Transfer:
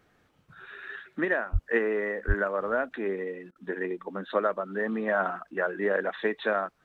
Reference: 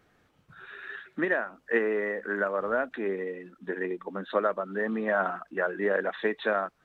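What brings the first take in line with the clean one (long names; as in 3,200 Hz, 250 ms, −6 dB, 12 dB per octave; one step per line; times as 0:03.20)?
0:01.52–0:01.64: high-pass filter 140 Hz 24 dB per octave
0:02.27–0:02.39: high-pass filter 140 Hz 24 dB per octave
repair the gap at 0:03.51, 45 ms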